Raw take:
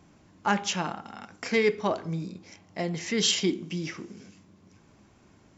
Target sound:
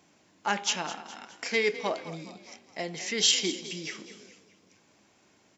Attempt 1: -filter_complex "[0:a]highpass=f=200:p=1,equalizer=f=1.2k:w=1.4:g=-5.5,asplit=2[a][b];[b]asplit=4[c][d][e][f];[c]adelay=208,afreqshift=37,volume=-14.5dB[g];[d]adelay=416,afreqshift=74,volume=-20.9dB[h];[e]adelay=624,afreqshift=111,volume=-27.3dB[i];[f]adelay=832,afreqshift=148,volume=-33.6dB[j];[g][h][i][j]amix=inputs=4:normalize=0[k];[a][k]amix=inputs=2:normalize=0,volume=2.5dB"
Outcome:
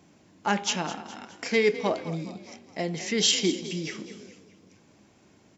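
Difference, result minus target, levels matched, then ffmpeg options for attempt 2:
250 Hz band +6.0 dB
-filter_complex "[0:a]highpass=f=760:p=1,equalizer=f=1.2k:w=1.4:g=-5.5,asplit=2[a][b];[b]asplit=4[c][d][e][f];[c]adelay=208,afreqshift=37,volume=-14.5dB[g];[d]adelay=416,afreqshift=74,volume=-20.9dB[h];[e]adelay=624,afreqshift=111,volume=-27.3dB[i];[f]adelay=832,afreqshift=148,volume=-33.6dB[j];[g][h][i][j]amix=inputs=4:normalize=0[k];[a][k]amix=inputs=2:normalize=0,volume=2.5dB"

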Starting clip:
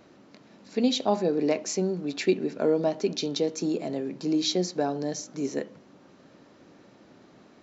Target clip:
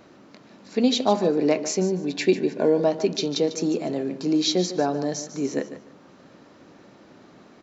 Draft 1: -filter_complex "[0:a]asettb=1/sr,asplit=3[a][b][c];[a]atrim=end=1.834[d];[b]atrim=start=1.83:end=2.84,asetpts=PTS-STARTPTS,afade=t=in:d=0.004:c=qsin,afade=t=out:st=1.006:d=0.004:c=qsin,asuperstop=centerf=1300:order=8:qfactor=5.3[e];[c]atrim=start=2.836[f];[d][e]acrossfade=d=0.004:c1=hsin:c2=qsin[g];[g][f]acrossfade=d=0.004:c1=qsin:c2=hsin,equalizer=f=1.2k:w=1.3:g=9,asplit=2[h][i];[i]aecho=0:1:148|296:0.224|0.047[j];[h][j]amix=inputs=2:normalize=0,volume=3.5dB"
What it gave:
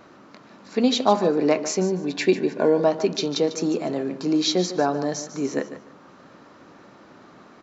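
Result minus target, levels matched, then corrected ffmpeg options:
1000 Hz band +2.5 dB
-filter_complex "[0:a]asettb=1/sr,asplit=3[a][b][c];[a]atrim=end=1.834[d];[b]atrim=start=1.83:end=2.84,asetpts=PTS-STARTPTS,afade=t=in:d=0.004:c=qsin,afade=t=out:st=1.006:d=0.004:c=qsin,asuperstop=centerf=1300:order=8:qfactor=5.3[e];[c]atrim=start=2.836[f];[d][e]acrossfade=d=0.004:c1=hsin:c2=qsin[g];[g][f]acrossfade=d=0.004:c1=qsin:c2=hsin,equalizer=f=1.2k:w=1.3:g=2,asplit=2[h][i];[i]aecho=0:1:148|296:0.224|0.047[j];[h][j]amix=inputs=2:normalize=0,volume=3.5dB"

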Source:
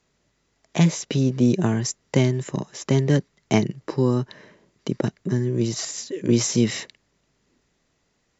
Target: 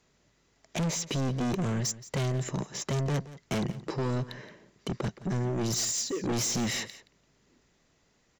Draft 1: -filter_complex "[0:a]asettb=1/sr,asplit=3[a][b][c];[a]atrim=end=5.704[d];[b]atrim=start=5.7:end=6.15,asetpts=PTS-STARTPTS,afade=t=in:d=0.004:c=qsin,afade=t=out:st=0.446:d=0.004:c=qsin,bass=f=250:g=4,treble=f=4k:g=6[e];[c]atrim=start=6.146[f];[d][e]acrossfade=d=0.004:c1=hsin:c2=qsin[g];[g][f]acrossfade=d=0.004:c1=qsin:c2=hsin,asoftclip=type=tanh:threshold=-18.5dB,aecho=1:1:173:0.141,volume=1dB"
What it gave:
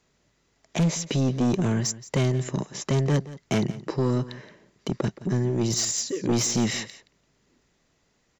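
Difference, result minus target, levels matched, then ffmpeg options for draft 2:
soft clip: distortion -6 dB
-filter_complex "[0:a]asettb=1/sr,asplit=3[a][b][c];[a]atrim=end=5.704[d];[b]atrim=start=5.7:end=6.15,asetpts=PTS-STARTPTS,afade=t=in:d=0.004:c=qsin,afade=t=out:st=0.446:d=0.004:c=qsin,bass=f=250:g=4,treble=f=4k:g=6[e];[c]atrim=start=6.146[f];[d][e]acrossfade=d=0.004:c1=hsin:c2=qsin[g];[g][f]acrossfade=d=0.004:c1=qsin:c2=hsin,asoftclip=type=tanh:threshold=-27.5dB,aecho=1:1:173:0.141,volume=1dB"

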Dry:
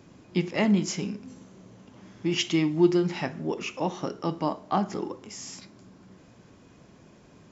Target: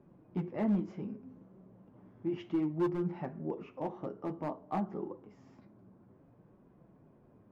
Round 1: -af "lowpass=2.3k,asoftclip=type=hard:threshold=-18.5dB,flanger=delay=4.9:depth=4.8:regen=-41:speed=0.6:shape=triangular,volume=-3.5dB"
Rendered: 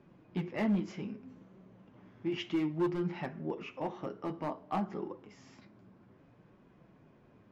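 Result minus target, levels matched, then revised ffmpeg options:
2000 Hz band +7.5 dB
-af "lowpass=1k,asoftclip=type=hard:threshold=-18.5dB,flanger=delay=4.9:depth=4.8:regen=-41:speed=0.6:shape=triangular,volume=-3.5dB"

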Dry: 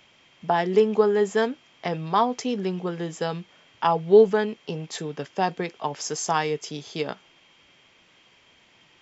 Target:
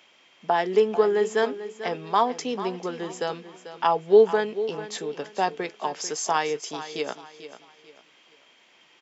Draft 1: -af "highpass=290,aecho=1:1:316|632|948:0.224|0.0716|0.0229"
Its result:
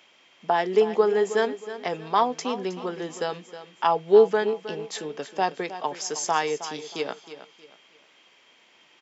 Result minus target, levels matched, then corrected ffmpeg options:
echo 0.126 s early
-af "highpass=290,aecho=1:1:442|884|1326:0.224|0.0716|0.0229"

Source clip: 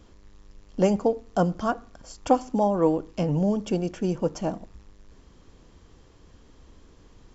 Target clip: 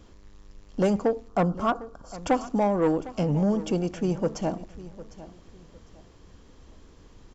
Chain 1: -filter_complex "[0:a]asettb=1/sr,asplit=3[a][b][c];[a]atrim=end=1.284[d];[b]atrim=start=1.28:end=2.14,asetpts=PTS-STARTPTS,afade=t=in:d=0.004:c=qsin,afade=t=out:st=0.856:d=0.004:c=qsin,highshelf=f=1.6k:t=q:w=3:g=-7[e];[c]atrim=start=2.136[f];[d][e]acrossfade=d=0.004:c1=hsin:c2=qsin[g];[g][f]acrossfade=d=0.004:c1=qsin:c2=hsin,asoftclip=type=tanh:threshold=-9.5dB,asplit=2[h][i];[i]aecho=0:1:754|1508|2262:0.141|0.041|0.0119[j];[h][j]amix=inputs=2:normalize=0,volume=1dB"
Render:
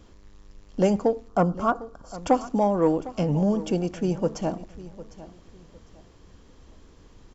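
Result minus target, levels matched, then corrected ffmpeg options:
soft clip: distortion -10 dB
-filter_complex "[0:a]asettb=1/sr,asplit=3[a][b][c];[a]atrim=end=1.284[d];[b]atrim=start=1.28:end=2.14,asetpts=PTS-STARTPTS,afade=t=in:d=0.004:c=qsin,afade=t=out:st=0.856:d=0.004:c=qsin,highshelf=f=1.6k:t=q:w=3:g=-7[e];[c]atrim=start=2.136[f];[d][e]acrossfade=d=0.004:c1=hsin:c2=qsin[g];[g][f]acrossfade=d=0.004:c1=qsin:c2=hsin,asoftclip=type=tanh:threshold=-16.5dB,asplit=2[h][i];[i]aecho=0:1:754|1508|2262:0.141|0.041|0.0119[j];[h][j]amix=inputs=2:normalize=0,volume=1dB"

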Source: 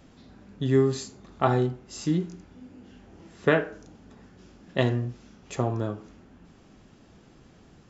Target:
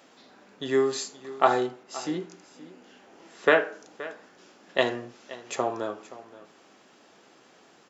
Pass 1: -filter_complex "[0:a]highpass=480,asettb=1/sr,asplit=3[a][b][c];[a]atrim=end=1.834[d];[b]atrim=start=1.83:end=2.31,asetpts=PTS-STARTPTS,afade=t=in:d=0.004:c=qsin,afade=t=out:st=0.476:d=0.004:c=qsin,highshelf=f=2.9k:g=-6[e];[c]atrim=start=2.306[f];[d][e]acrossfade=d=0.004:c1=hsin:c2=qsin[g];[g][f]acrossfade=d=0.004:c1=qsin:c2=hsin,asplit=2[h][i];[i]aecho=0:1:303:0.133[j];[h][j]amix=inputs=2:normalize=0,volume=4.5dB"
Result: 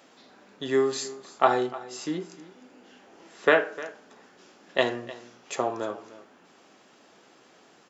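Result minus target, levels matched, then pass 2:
echo 0.221 s early
-filter_complex "[0:a]highpass=480,asettb=1/sr,asplit=3[a][b][c];[a]atrim=end=1.834[d];[b]atrim=start=1.83:end=2.31,asetpts=PTS-STARTPTS,afade=t=in:d=0.004:c=qsin,afade=t=out:st=0.476:d=0.004:c=qsin,highshelf=f=2.9k:g=-6[e];[c]atrim=start=2.306[f];[d][e]acrossfade=d=0.004:c1=hsin:c2=qsin[g];[g][f]acrossfade=d=0.004:c1=qsin:c2=hsin,asplit=2[h][i];[i]aecho=0:1:524:0.133[j];[h][j]amix=inputs=2:normalize=0,volume=4.5dB"

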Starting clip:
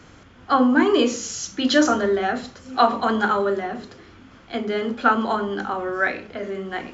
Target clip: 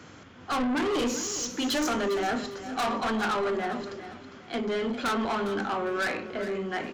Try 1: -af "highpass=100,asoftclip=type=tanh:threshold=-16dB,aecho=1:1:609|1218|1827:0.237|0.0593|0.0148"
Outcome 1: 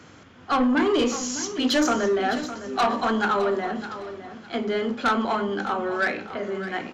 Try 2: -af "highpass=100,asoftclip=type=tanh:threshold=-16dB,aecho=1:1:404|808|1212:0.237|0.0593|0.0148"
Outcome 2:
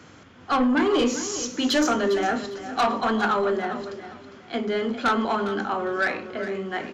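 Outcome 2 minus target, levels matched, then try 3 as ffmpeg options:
soft clip: distortion -6 dB
-af "highpass=100,asoftclip=type=tanh:threshold=-25dB,aecho=1:1:404|808|1212:0.237|0.0593|0.0148"

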